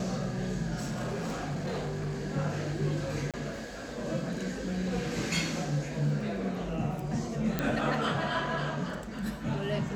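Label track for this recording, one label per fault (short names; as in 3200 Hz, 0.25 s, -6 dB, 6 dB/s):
0.790000	2.210000	clipped -30 dBFS
3.310000	3.340000	gap 27 ms
7.590000	7.590000	pop -14 dBFS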